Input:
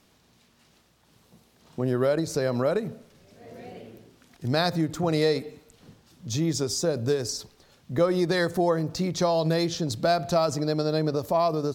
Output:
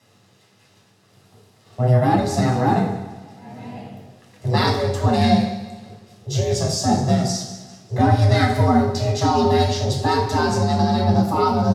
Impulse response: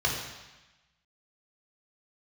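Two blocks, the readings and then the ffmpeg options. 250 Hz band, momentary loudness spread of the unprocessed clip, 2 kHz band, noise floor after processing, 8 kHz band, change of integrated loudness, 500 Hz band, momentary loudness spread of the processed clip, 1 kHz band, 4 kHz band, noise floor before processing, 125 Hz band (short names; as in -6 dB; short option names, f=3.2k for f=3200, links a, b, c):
+7.5 dB, 14 LU, +6.0 dB, -56 dBFS, +4.0 dB, +6.5 dB, +2.5 dB, 17 LU, +11.0 dB, +5.0 dB, -62 dBFS, +11.5 dB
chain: -filter_complex "[0:a]aeval=exprs='val(0)*sin(2*PI*250*n/s)':c=same,aecho=1:1:199|398|597|796:0.178|0.0765|0.0329|0.0141[a];[1:a]atrim=start_sample=2205,asetrate=74970,aresample=44100[b];[a][b]afir=irnorm=-1:irlink=0,volume=1.5dB"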